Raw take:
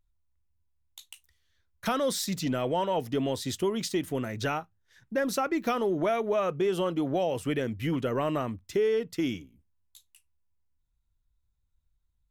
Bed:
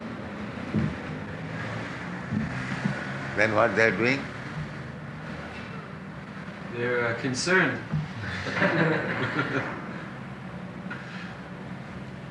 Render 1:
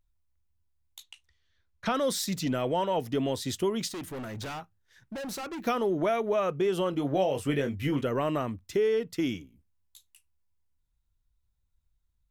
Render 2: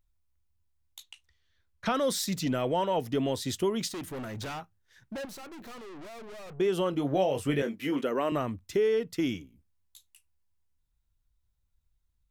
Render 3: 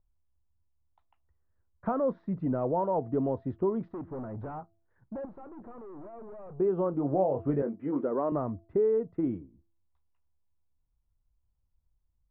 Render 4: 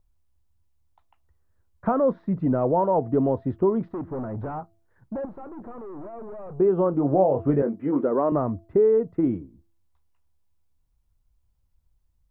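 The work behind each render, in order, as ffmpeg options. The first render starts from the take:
ffmpeg -i in.wav -filter_complex "[0:a]asplit=3[link_01][link_02][link_03];[link_01]afade=type=out:start_time=1.02:duration=0.02[link_04];[link_02]lowpass=5200,afade=type=in:start_time=1.02:duration=0.02,afade=type=out:start_time=1.93:duration=0.02[link_05];[link_03]afade=type=in:start_time=1.93:duration=0.02[link_06];[link_04][link_05][link_06]amix=inputs=3:normalize=0,asplit=3[link_07][link_08][link_09];[link_07]afade=type=out:start_time=3.87:duration=0.02[link_10];[link_08]asoftclip=type=hard:threshold=-35dB,afade=type=in:start_time=3.87:duration=0.02,afade=type=out:start_time=5.6:duration=0.02[link_11];[link_09]afade=type=in:start_time=5.6:duration=0.02[link_12];[link_10][link_11][link_12]amix=inputs=3:normalize=0,asettb=1/sr,asplit=3[link_13][link_14][link_15];[link_13]atrim=end=6.914[link_16];[link_14]atrim=start=6.91:end=8.04,asetpts=PTS-STARTPTS,afade=type=in:duration=0.004:curve=qsin,afade=type=out:start_time=1.126:duration=0.004:curve=qsin,asplit=2[link_17][link_18];[link_18]adelay=21,volume=-6dB[link_19];[link_17][link_19]amix=inputs=2:normalize=0,atrim=end_sample=49833[link_20];[link_15]atrim=start=8.036[link_21];[link_16][link_20]acrossfade=duration=0.004:curve1=hsin:curve2=qsin[link_22];[link_22][link_21]acrossfade=duration=0.004:curve1=qsin:curve2=hsin" out.wav
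ffmpeg -i in.wav -filter_complex "[0:a]asettb=1/sr,asplit=3[link_01][link_02][link_03];[link_01]atrim=end=5.254[link_04];[link_02]atrim=start=5.25:end=6.6,asetpts=PTS-STARTPTS,afade=type=in:duration=0.004:curve=qsin,afade=type=out:start_time=1.346:duration=0.004:curve=qsin,aeval=exprs='(tanh(158*val(0)+0.4)-tanh(0.4))/158':channel_layout=same[link_05];[link_03]atrim=start=6.596[link_06];[link_04][link_05]acrossfade=duration=0.004:curve1=hsin:curve2=qsin[link_07];[link_07][link_06]acrossfade=duration=0.004:curve1=qsin:curve2=hsin,asettb=1/sr,asplit=3[link_08][link_09][link_10];[link_08]atrim=end=7.624[link_11];[link_09]atrim=start=7.62:end=8.32,asetpts=PTS-STARTPTS,afade=type=in:duration=0.004:curve=qsin,afade=type=out:start_time=0.696:duration=0.004:curve=qsin,highpass=frequency=210:width=0.5412,highpass=frequency=210:width=1.3066[link_12];[link_10]atrim=start=8.316[link_13];[link_11][link_12]acrossfade=duration=0.004:curve1=hsin:curve2=qsin[link_14];[link_14][link_13]acrossfade=duration=0.004:curve1=qsin:curve2=hsin" out.wav
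ffmpeg -i in.wav -af "lowpass=frequency=1100:width=0.5412,lowpass=frequency=1100:width=1.3066,bandreject=frequency=335.3:width_type=h:width=4,bandreject=frequency=670.6:width_type=h:width=4" out.wav
ffmpeg -i in.wav -af "volume=7dB" out.wav

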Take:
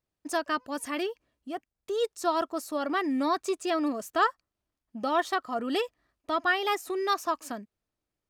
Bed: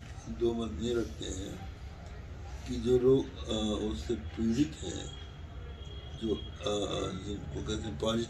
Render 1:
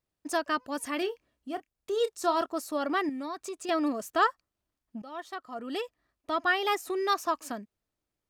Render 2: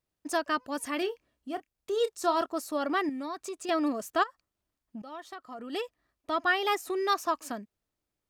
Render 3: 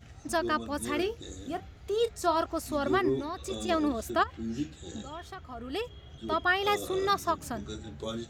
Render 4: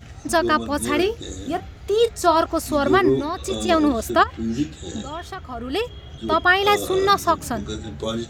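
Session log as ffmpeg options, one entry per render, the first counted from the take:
ffmpeg -i in.wav -filter_complex "[0:a]asettb=1/sr,asplit=3[link_01][link_02][link_03];[link_01]atrim=end=0.984[link_04];[link_02]atrim=start=0.98:end=2.46,asetpts=PTS-STARTPTS,afade=type=in:duration=0.004:curve=qsin,afade=type=out:start_time=1.476:duration=0.004:curve=qsin,asplit=2[link_05][link_06];[link_06]adelay=30,volume=-12dB[link_07];[link_05][link_07]amix=inputs=2:normalize=0,atrim=end_sample=65268[link_08];[link_03]atrim=start=2.456[link_09];[link_04][link_08]acrossfade=duration=0.004:curve1=hsin:curve2=qsin[link_10];[link_10][link_09]acrossfade=duration=0.004:curve1=qsin:curve2=hsin,asettb=1/sr,asplit=3[link_11][link_12][link_13];[link_11]atrim=end=3.094[link_14];[link_12]atrim=start=3.09:end=3.69,asetpts=PTS-STARTPTS,afade=type=in:duration=0.004:curve=qsin,afade=type=out:start_time=0.596:duration=0.004:curve=qsin,acompressor=threshold=-38dB:ratio=2.5:attack=3.2:release=140:knee=1:detection=peak[link_15];[link_13]atrim=start=3.686[link_16];[link_14][link_15]acrossfade=duration=0.004:curve1=hsin:curve2=qsin[link_17];[link_17][link_16]acrossfade=duration=0.004:curve1=qsin:curve2=hsin,asplit=2[link_18][link_19];[link_18]atrim=end=5.02,asetpts=PTS-STARTPTS,afade=type=out:start_time=5.016:duration=0.004:curve=hsin:silence=0.11885[link_20];[link_19]atrim=start=5.02,asetpts=PTS-STARTPTS,afade=type=in:duration=1.58:silence=0.11885[link_21];[link_20][link_21]concat=n=2:v=0:a=1" out.wav
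ffmpeg -i in.wav -filter_complex "[0:a]asplit=3[link_01][link_02][link_03];[link_01]afade=type=out:start_time=4.22:duration=0.02[link_04];[link_02]acompressor=threshold=-36dB:ratio=20:attack=3.2:release=140:knee=1:detection=peak,afade=type=in:start_time=4.22:duration=0.02,afade=type=out:start_time=5.72:duration=0.02[link_05];[link_03]afade=type=in:start_time=5.72:duration=0.02[link_06];[link_04][link_05][link_06]amix=inputs=3:normalize=0" out.wav
ffmpeg -i in.wav -i bed.wav -filter_complex "[1:a]volume=-5dB[link_01];[0:a][link_01]amix=inputs=2:normalize=0" out.wav
ffmpeg -i in.wav -af "volume=10dB" out.wav

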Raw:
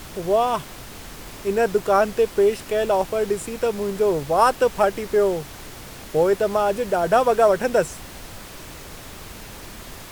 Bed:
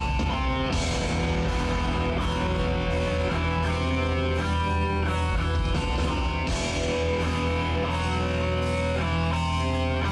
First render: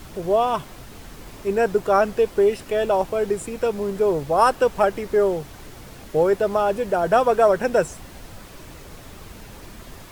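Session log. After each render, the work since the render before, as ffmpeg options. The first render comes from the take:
ffmpeg -i in.wav -af "afftdn=noise_reduction=6:noise_floor=-39" out.wav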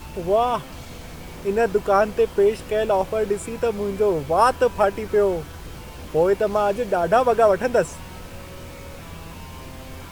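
ffmpeg -i in.wav -i bed.wav -filter_complex "[1:a]volume=-15dB[link_01];[0:a][link_01]amix=inputs=2:normalize=0" out.wav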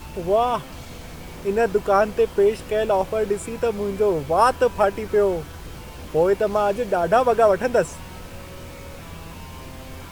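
ffmpeg -i in.wav -af anull out.wav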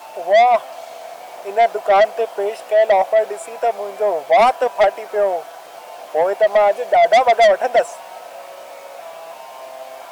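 ffmpeg -i in.wav -af "highpass=frequency=680:width_type=q:width=8,asoftclip=type=tanh:threshold=-8dB" out.wav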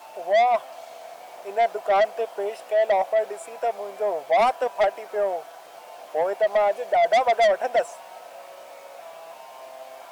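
ffmpeg -i in.wav -af "volume=-7dB" out.wav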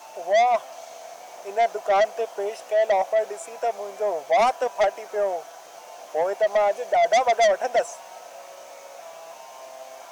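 ffmpeg -i in.wav -af "equalizer=frequency=6200:width_type=o:width=0.41:gain=11" out.wav

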